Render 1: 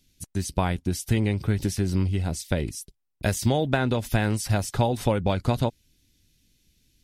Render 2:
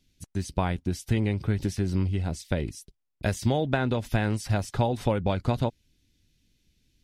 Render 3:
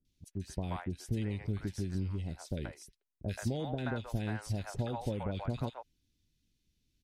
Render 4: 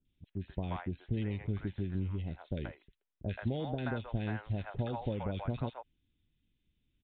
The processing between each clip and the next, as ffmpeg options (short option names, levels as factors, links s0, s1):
-af "highshelf=f=7300:g=-11,volume=0.794"
-filter_complex "[0:a]acrossover=split=660|2100[s0][s1][s2];[s2]adelay=50[s3];[s1]adelay=130[s4];[s0][s4][s3]amix=inputs=3:normalize=0,volume=0.355"
-af "aresample=8000,aresample=44100"